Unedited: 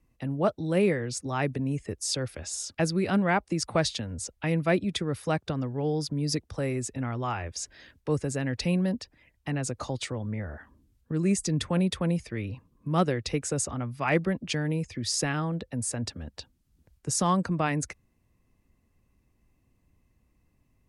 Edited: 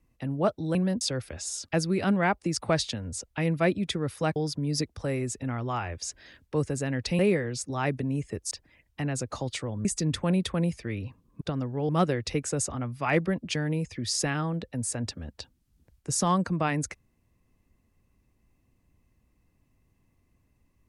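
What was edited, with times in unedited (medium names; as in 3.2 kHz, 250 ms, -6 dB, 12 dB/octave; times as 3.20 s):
0.75–2.07 s: swap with 8.73–8.99 s
5.42–5.90 s: move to 12.88 s
10.33–11.32 s: delete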